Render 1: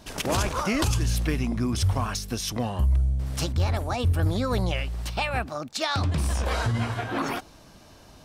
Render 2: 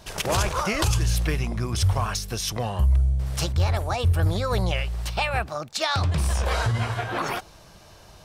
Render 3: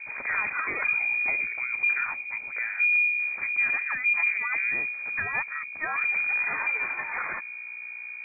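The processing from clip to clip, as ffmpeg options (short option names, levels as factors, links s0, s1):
-af "equalizer=f=260:t=o:w=0.41:g=-14,volume=1.33"
-af "aeval=exprs='val(0)+0.0224*(sin(2*PI*60*n/s)+sin(2*PI*2*60*n/s)/2+sin(2*PI*3*60*n/s)/3+sin(2*PI*4*60*n/s)/4+sin(2*PI*5*60*n/s)/5)':c=same,lowpass=f=2100:t=q:w=0.5098,lowpass=f=2100:t=q:w=0.6013,lowpass=f=2100:t=q:w=0.9,lowpass=f=2100:t=q:w=2.563,afreqshift=-2500,volume=0.596"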